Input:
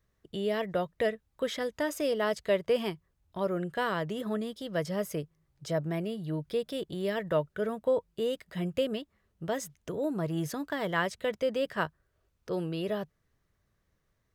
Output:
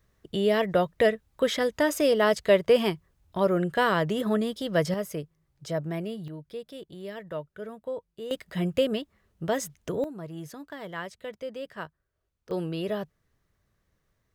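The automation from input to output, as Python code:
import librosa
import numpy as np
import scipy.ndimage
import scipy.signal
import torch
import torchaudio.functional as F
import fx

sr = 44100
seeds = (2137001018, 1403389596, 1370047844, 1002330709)

y = fx.gain(x, sr, db=fx.steps((0.0, 7.0), (4.94, 0.5), (6.28, -7.0), (8.31, 5.0), (10.04, -7.0), (12.51, 2.0)))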